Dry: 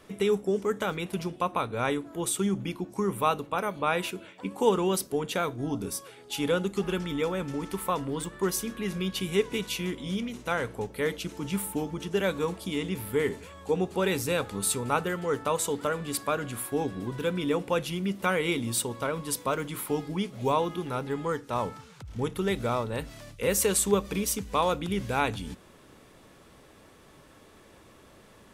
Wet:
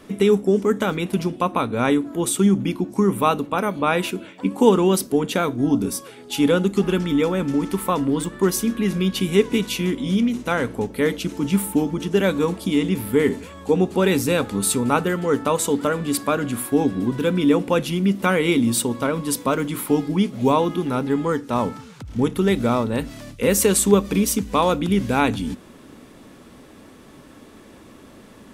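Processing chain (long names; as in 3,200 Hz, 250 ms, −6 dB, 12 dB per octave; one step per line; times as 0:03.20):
parametric band 250 Hz +9.5 dB 0.78 octaves
level +6 dB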